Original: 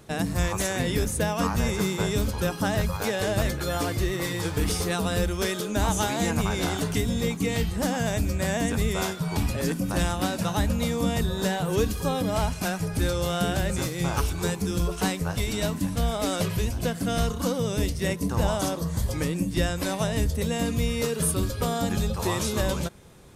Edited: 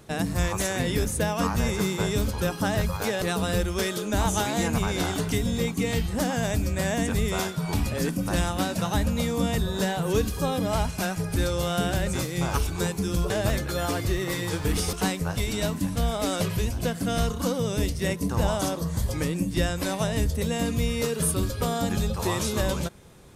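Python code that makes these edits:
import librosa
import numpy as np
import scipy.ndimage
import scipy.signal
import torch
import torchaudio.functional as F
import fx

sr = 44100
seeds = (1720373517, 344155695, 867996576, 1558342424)

y = fx.edit(x, sr, fx.move(start_s=3.22, length_s=1.63, to_s=14.93), tone=tone)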